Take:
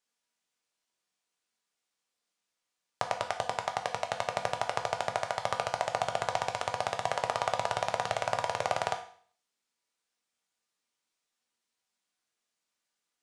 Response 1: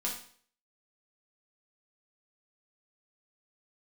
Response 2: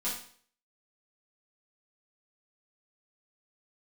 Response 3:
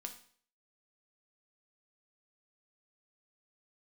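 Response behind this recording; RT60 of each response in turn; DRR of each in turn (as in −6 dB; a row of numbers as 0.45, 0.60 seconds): 3; 0.50, 0.50, 0.50 seconds; −4.0, −9.5, 4.5 decibels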